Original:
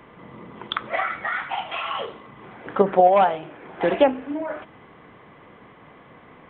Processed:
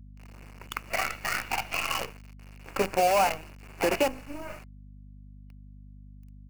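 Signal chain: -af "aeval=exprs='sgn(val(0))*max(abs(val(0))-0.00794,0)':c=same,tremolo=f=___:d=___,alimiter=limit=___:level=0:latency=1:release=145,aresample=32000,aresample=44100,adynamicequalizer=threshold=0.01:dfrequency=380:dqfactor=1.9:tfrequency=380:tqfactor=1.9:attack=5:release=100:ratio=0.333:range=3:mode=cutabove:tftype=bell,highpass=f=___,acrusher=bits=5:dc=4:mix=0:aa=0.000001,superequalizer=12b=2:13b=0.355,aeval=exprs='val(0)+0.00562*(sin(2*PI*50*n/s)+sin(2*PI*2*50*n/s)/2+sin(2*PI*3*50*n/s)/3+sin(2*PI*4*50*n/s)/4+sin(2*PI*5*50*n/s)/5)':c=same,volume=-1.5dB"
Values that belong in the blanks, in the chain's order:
0.55, 0.33, -13dB, 120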